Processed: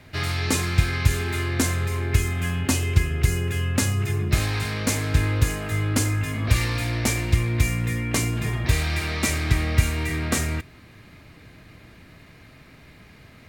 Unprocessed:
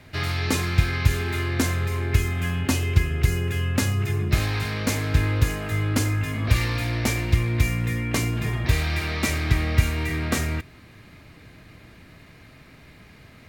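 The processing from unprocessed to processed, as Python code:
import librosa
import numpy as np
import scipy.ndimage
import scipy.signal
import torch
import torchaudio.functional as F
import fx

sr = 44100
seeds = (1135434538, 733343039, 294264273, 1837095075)

y = fx.dynamic_eq(x, sr, hz=8400.0, q=1.2, threshold_db=-48.0, ratio=4.0, max_db=6)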